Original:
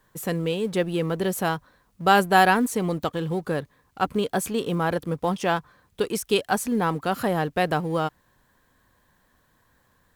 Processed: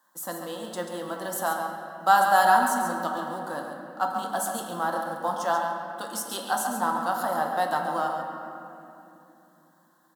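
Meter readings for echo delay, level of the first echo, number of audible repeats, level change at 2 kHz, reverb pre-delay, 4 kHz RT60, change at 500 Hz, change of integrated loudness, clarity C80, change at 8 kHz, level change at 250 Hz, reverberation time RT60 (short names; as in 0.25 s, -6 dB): 0.138 s, -7.5 dB, 1, -2.5 dB, 6 ms, 1.7 s, -6.0 dB, -2.0 dB, 3.0 dB, +0.5 dB, -9.5 dB, 3.0 s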